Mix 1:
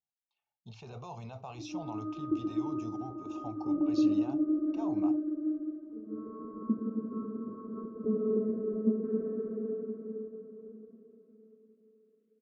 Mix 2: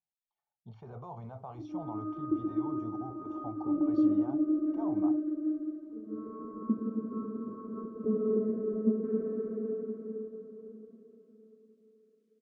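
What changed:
speech: add Savitzky-Golay smoothing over 41 samples
background: remove high-frequency loss of the air 340 metres

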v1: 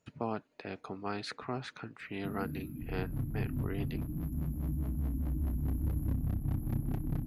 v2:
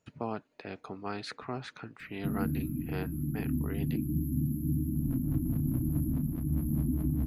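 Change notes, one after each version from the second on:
first sound +8.5 dB
second sound: entry +2.15 s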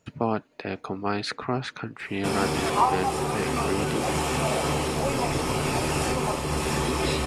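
speech +10.0 dB
first sound: remove linear-phase brick-wall band-stop 330–11,000 Hz

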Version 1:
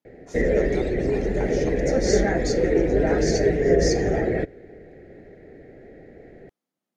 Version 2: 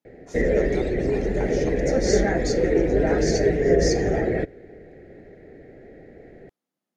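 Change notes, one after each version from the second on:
nothing changed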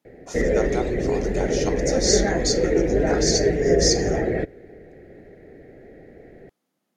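speech +9.5 dB

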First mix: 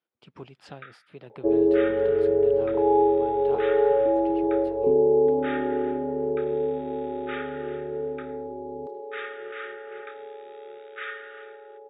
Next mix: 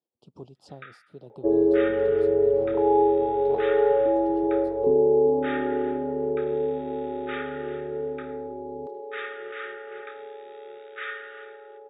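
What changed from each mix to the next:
speech: add Butterworth band-reject 1,900 Hz, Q 0.54
first sound: send +7.0 dB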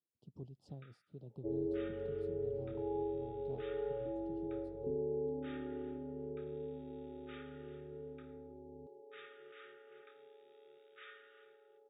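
second sound −7.5 dB
master: add drawn EQ curve 120 Hz 0 dB, 1,800 Hz −23 dB, 2,900 Hz −15 dB

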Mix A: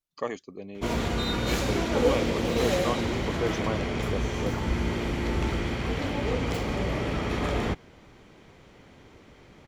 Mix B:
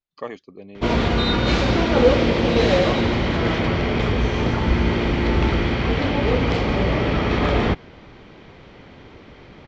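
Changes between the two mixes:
background +8.5 dB
master: add low-pass filter 4,900 Hz 24 dB per octave

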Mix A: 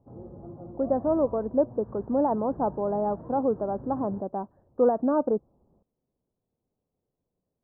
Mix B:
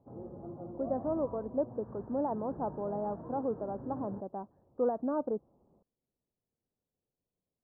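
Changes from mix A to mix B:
speech −8.5 dB
background: add low-shelf EQ 100 Hz −10.5 dB

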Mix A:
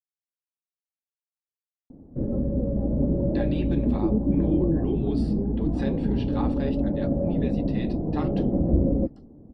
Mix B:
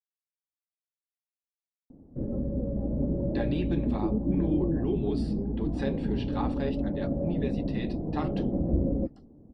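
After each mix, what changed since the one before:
background −5.0 dB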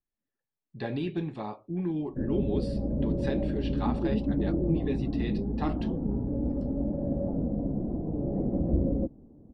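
speech: entry −2.55 s

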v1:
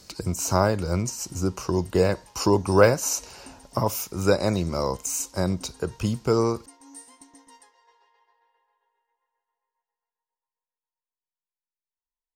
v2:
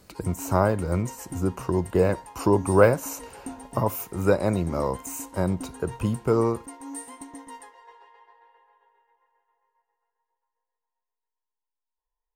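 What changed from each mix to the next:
background +11.5 dB
master: add parametric band 5,400 Hz −14.5 dB 1.2 octaves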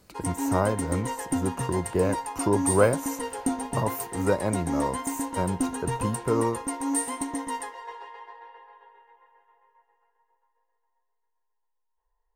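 speech −3.5 dB
background +10.5 dB

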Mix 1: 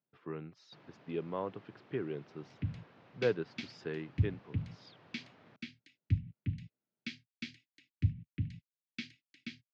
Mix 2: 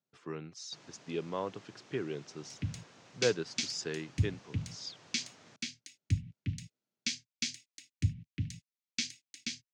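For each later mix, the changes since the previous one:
master: remove high-frequency loss of the air 390 metres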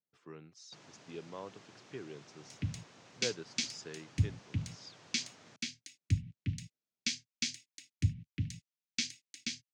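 speech −9.0 dB

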